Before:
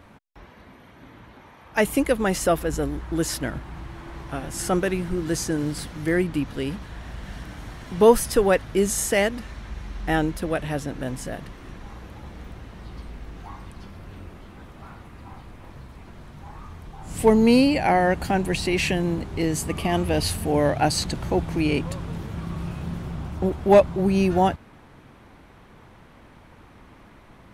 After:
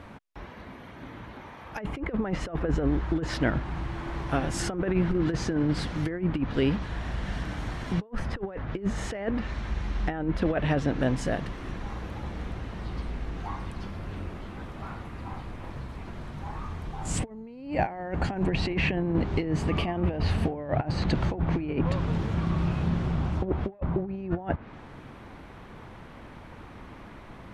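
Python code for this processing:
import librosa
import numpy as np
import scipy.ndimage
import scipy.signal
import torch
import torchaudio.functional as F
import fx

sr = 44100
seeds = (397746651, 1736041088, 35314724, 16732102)

y = fx.peak_eq(x, sr, hz=8000.0, db=14.0, octaves=1.2, at=(17.05, 18.47))
y = fx.env_lowpass_down(y, sr, base_hz=1800.0, full_db=-19.0)
y = fx.high_shelf(y, sr, hz=6500.0, db=-8.5)
y = fx.over_compress(y, sr, threshold_db=-26.0, ratio=-0.5)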